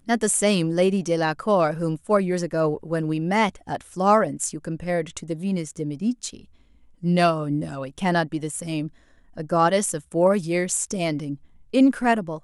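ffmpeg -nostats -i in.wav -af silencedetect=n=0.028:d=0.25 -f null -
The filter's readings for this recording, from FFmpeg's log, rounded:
silence_start: 6.39
silence_end: 7.03 | silence_duration: 0.64
silence_start: 8.88
silence_end: 9.38 | silence_duration: 0.50
silence_start: 11.35
silence_end: 11.74 | silence_duration: 0.39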